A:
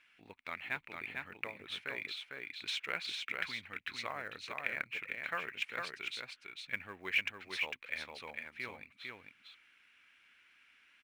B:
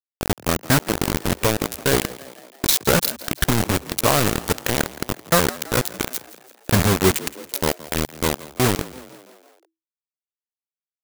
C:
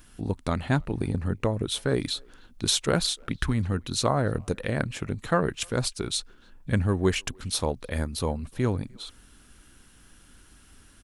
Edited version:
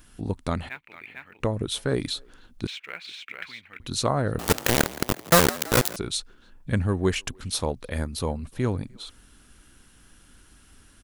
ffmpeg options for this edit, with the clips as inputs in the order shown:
-filter_complex "[0:a]asplit=2[s0][s1];[2:a]asplit=4[s2][s3][s4][s5];[s2]atrim=end=0.692[s6];[s0]atrim=start=0.688:end=1.402[s7];[s3]atrim=start=1.398:end=2.672[s8];[s1]atrim=start=2.668:end=3.802[s9];[s4]atrim=start=3.798:end=4.392[s10];[1:a]atrim=start=4.388:end=5.962[s11];[s5]atrim=start=5.958[s12];[s6][s7]acrossfade=d=0.004:c1=hsin:c2=hsin[s13];[s13][s8]acrossfade=d=0.004:c1=hsin:c2=hsin[s14];[s14][s9]acrossfade=d=0.004:c1=hsin:c2=hsin[s15];[s15][s10]acrossfade=d=0.004:c1=hsin:c2=hsin[s16];[s16][s11]acrossfade=d=0.004:c1=hsin:c2=hsin[s17];[s17][s12]acrossfade=d=0.004:c1=hsin:c2=hsin"

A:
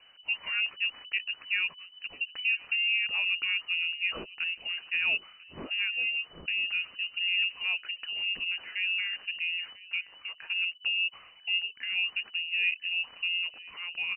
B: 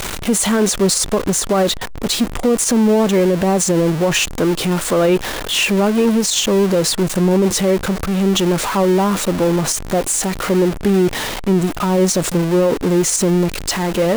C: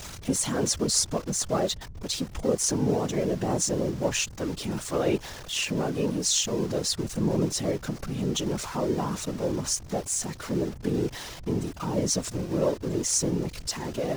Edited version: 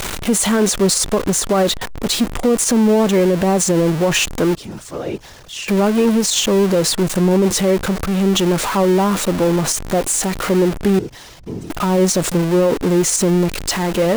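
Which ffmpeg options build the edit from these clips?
-filter_complex "[2:a]asplit=2[s0][s1];[1:a]asplit=3[s2][s3][s4];[s2]atrim=end=4.552[s5];[s0]atrim=start=4.548:end=5.682[s6];[s3]atrim=start=5.678:end=10.992[s7];[s1]atrim=start=10.988:end=11.702[s8];[s4]atrim=start=11.698[s9];[s5][s6]acrossfade=d=0.004:c1=hsin:c2=hsin[s10];[s10][s7]acrossfade=d=0.004:c1=hsin:c2=hsin[s11];[s11][s8]acrossfade=d=0.004:c1=hsin:c2=hsin[s12];[s12][s9]acrossfade=d=0.004:c1=hsin:c2=hsin"

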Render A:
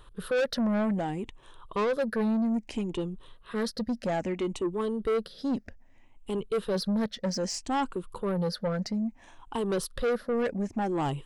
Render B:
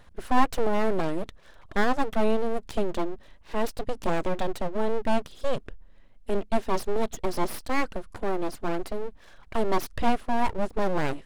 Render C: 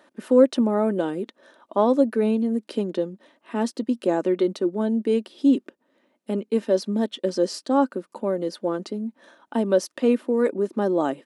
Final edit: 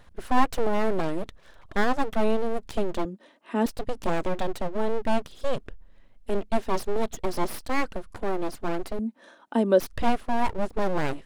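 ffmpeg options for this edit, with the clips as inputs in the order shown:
-filter_complex "[2:a]asplit=2[s0][s1];[1:a]asplit=3[s2][s3][s4];[s2]atrim=end=3.052[s5];[s0]atrim=start=3.048:end=3.662[s6];[s3]atrim=start=3.658:end=8.992[s7];[s1]atrim=start=8.988:end=9.802[s8];[s4]atrim=start=9.798[s9];[s5][s6]acrossfade=d=0.004:c1=hsin:c2=hsin[s10];[s10][s7]acrossfade=d=0.004:c1=hsin:c2=hsin[s11];[s11][s8]acrossfade=d=0.004:c1=hsin:c2=hsin[s12];[s12][s9]acrossfade=d=0.004:c1=hsin:c2=hsin"

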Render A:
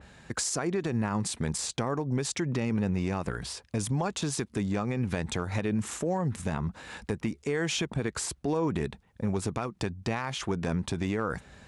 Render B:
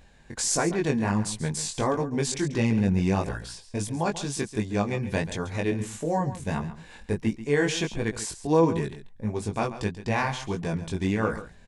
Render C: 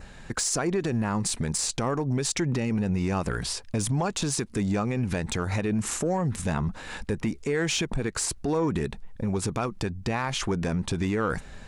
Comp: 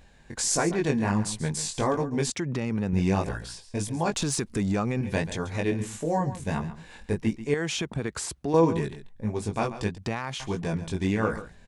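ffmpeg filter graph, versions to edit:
-filter_complex "[0:a]asplit=3[s0][s1][s2];[1:a]asplit=5[s3][s4][s5][s6][s7];[s3]atrim=end=2.302[s8];[s0]atrim=start=2.298:end=2.932[s9];[s4]atrim=start=2.928:end=4.142[s10];[2:a]atrim=start=4.138:end=5.012[s11];[s5]atrim=start=5.008:end=7.542[s12];[s1]atrim=start=7.538:end=8.542[s13];[s6]atrim=start=8.538:end=9.982[s14];[s2]atrim=start=9.978:end=10.402[s15];[s7]atrim=start=10.398[s16];[s8][s9]acrossfade=d=0.004:c1=hsin:c2=hsin[s17];[s17][s10]acrossfade=d=0.004:c1=hsin:c2=hsin[s18];[s18][s11]acrossfade=d=0.004:c1=hsin:c2=hsin[s19];[s19][s12]acrossfade=d=0.004:c1=hsin:c2=hsin[s20];[s20][s13]acrossfade=d=0.004:c1=hsin:c2=hsin[s21];[s21][s14]acrossfade=d=0.004:c1=hsin:c2=hsin[s22];[s22][s15]acrossfade=d=0.004:c1=hsin:c2=hsin[s23];[s23][s16]acrossfade=d=0.004:c1=hsin:c2=hsin"

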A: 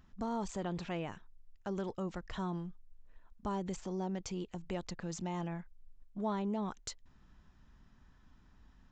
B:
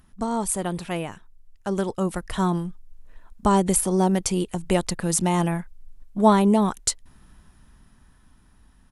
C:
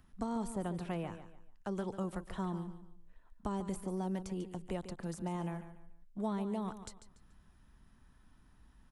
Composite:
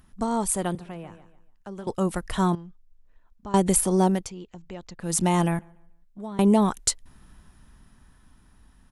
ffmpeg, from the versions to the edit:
-filter_complex "[2:a]asplit=2[s0][s1];[0:a]asplit=2[s2][s3];[1:a]asplit=5[s4][s5][s6][s7][s8];[s4]atrim=end=0.752[s9];[s0]atrim=start=0.748:end=1.872[s10];[s5]atrim=start=1.868:end=2.552[s11];[s2]atrim=start=2.548:end=3.542[s12];[s6]atrim=start=3.538:end=4.31[s13];[s3]atrim=start=4.07:end=5.21[s14];[s7]atrim=start=4.97:end=5.592[s15];[s1]atrim=start=5.588:end=6.392[s16];[s8]atrim=start=6.388[s17];[s9][s10]acrossfade=d=0.004:c1=hsin:c2=hsin[s18];[s18][s11]acrossfade=d=0.004:c1=hsin:c2=hsin[s19];[s19][s12]acrossfade=d=0.004:c1=hsin:c2=hsin[s20];[s20][s13]acrossfade=d=0.004:c1=hsin:c2=hsin[s21];[s21][s14]acrossfade=d=0.24:c1=tri:c2=tri[s22];[s22][s15]acrossfade=d=0.24:c1=tri:c2=tri[s23];[s23][s16]acrossfade=d=0.004:c1=hsin:c2=hsin[s24];[s24][s17]acrossfade=d=0.004:c1=hsin:c2=hsin"

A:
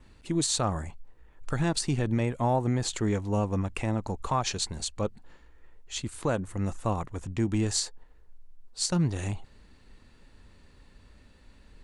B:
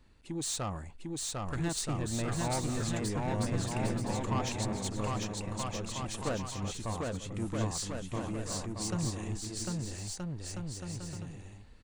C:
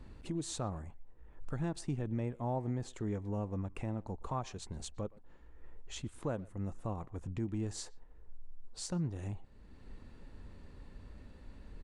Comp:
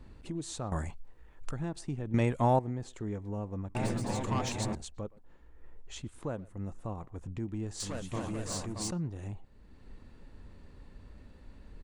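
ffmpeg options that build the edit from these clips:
-filter_complex "[0:a]asplit=2[s0][s1];[1:a]asplit=2[s2][s3];[2:a]asplit=5[s4][s5][s6][s7][s8];[s4]atrim=end=0.722[s9];[s0]atrim=start=0.718:end=1.512[s10];[s5]atrim=start=1.508:end=2.142[s11];[s1]atrim=start=2.138:end=2.592[s12];[s6]atrim=start=2.588:end=3.752[s13];[s2]atrim=start=3.748:end=4.752[s14];[s7]atrim=start=4.748:end=7.802[s15];[s3]atrim=start=7.798:end=8.912[s16];[s8]atrim=start=8.908[s17];[s9][s10]acrossfade=d=0.004:c1=hsin:c2=hsin[s18];[s18][s11]acrossfade=d=0.004:c1=hsin:c2=hsin[s19];[s19][s12]acrossfade=d=0.004:c1=hsin:c2=hsin[s20];[s20][s13]acrossfade=d=0.004:c1=hsin:c2=hsin[s21];[s21][s14]acrossfade=d=0.004:c1=hsin:c2=hsin[s22];[s22][s15]acrossfade=d=0.004:c1=hsin:c2=hsin[s23];[s23][s16]acrossfade=d=0.004:c1=hsin:c2=hsin[s24];[s24][s17]acrossfade=d=0.004:c1=hsin:c2=hsin"

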